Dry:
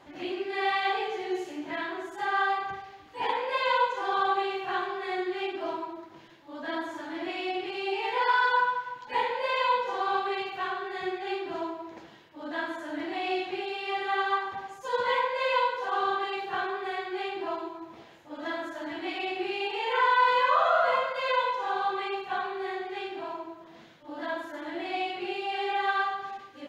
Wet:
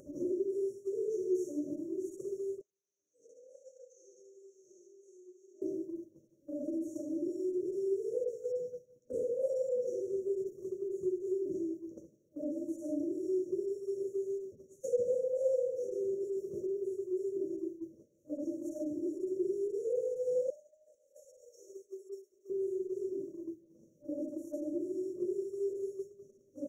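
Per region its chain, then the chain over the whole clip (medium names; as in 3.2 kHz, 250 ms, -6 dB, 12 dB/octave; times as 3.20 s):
2.61–5.62 s: two resonant band-passes 2.8 kHz, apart 2.3 oct + feedback delay 74 ms, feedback 54%, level -8 dB
20.50–22.50 s: high-pass 1 kHz + comb 2.9 ms, depth 98% + compression 4:1, threshold -28 dBFS
whole clip: FFT band-reject 620–5500 Hz; expander -37 dBFS; upward compressor, threshold -31 dBFS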